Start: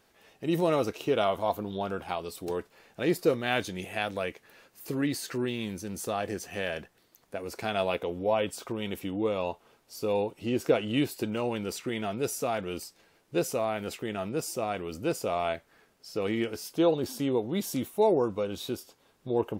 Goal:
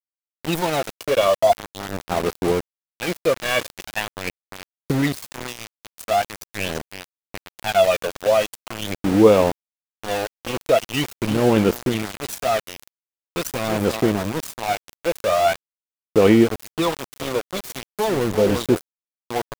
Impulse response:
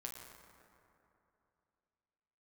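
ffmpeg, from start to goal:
-af "aecho=1:1:343|686|1029:0.178|0.0569|0.0182,aphaser=in_gain=1:out_gain=1:delay=1.8:decay=0.75:speed=0.43:type=sinusoidal,aeval=exprs='val(0)*gte(abs(val(0)),0.0447)':channel_layout=same,volume=5dB"

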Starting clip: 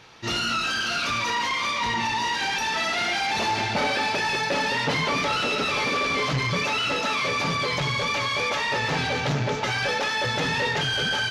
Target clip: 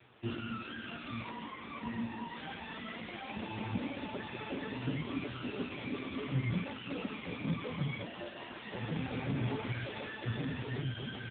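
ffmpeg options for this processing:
ffmpeg -i in.wav -filter_complex "[0:a]acrossover=split=350[link_01][link_02];[link_01]acontrast=82[link_03];[link_02]aeval=exprs='0.0473*(abs(mod(val(0)/0.0473+3,4)-2)-1)':channel_layout=same[link_04];[link_03][link_04]amix=inputs=2:normalize=0,flanger=delay=7.9:depth=8.5:regen=-63:speed=0.93:shape=triangular,asplit=3[link_05][link_06][link_07];[link_05]afade=type=out:start_time=8.03:duration=0.02[link_08];[link_06]aeval=exprs='val(0)*sin(2*PI*470*n/s)':channel_layout=same,afade=type=in:start_time=8.03:duration=0.02,afade=type=out:start_time=8.61:duration=0.02[link_09];[link_07]afade=type=in:start_time=8.61:duration=0.02[link_10];[link_08][link_09][link_10]amix=inputs=3:normalize=0,asplit=3[link_11][link_12][link_13];[link_11]afade=type=out:start_time=9.34:duration=0.02[link_14];[link_12]highshelf=frequency=3100:gain=5,afade=type=in:start_time=9.34:duration=0.02,afade=type=out:start_time=10.06:duration=0.02[link_15];[link_13]afade=type=in:start_time=10.06:duration=0.02[link_16];[link_14][link_15][link_16]amix=inputs=3:normalize=0,flanger=delay=2.9:depth=1.1:regen=-53:speed=0.19:shape=sinusoidal,asettb=1/sr,asplit=3[link_17][link_18][link_19];[link_17]atrim=end=1.304[link_20];[link_18]atrim=start=1.3:end=2.35,asetpts=PTS-STARTPTS,afade=type=in:duration=0.004:curve=qsin,afade=type=out:start_time=1.046:duration=0.004:curve=qsin,adynamicsmooth=sensitivity=6.5:basefreq=2200[link_21];[link_19]atrim=start=2.346[link_22];[link_20][link_21]acrossfade=duration=0.004:curve1=hsin:curve2=qsin[link_23];[link_23][link_22]acrossfade=duration=0.004:curve1=qsin:curve2=hsin,aecho=1:1:1034|2068|3102:0.1|0.04|0.016" -ar 8000 -c:a libopencore_amrnb -b:a 5900 out.amr

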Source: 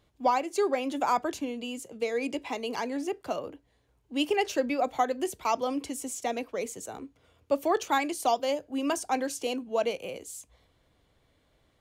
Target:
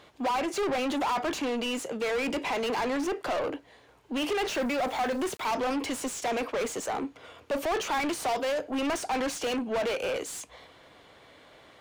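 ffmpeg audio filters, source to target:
ffmpeg -i in.wav -filter_complex "[0:a]asplit=2[link_01][link_02];[link_02]highpass=frequency=720:poles=1,volume=34dB,asoftclip=type=tanh:threshold=-14dB[link_03];[link_01][link_03]amix=inputs=2:normalize=0,lowpass=frequency=2600:poles=1,volume=-6dB,asettb=1/sr,asplit=3[link_04][link_05][link_06];[link_04]atrim=end=4.474[link_07];[link_05]atrim=start=4.47:end=5.52,asetpts=PTS-STARTPTS,afade=type=in:duration=0.004:curve=qsin,afade=type=out:start_time=1.046:duration=0.004:curve=qsin,aeval=exprs='val(0)*gte(abs(val(0)),0.015)':channel_layout=same[link_08];[link_06]atrim=start=5.516[link_09];[link_07][link_08]acrossfade=duration=0.004:curve1=hsin:curve2=qsin[link_10];[link_10][link_09]acrossfade=duration=0.004:curve1=qsin:curve2=hsin,volume=-7.5dB" out.wav

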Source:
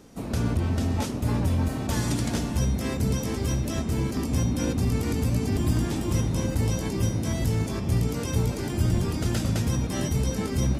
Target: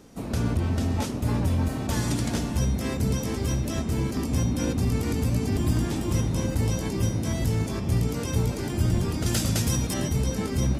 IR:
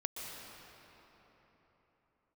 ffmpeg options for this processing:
-filter_complex "[0:a]asettb=1/sr,asplit=3[link_01][link_02][link_03];[link_01]atrim=end=9.264[link_04];[link_02]atrim=start=9.26:end=9.94,asetpts=PTS-STARTPTS,afade=type=in:duration=0.004:curve=qsin,afade=type=out:start_time=0.676:duration=0.004:curve=qsin,highshelf=frequency=3400:gain=10[link_05];[link_03]atrim=start=9.936[link_06];[link_04][link_05]acrossfade=duration=0.004:curve1=hsin:curve2=qsin[link_07];[link_07][link_06]acrossfade=duration=0.004:curve1=qsin:curve2=hsin"

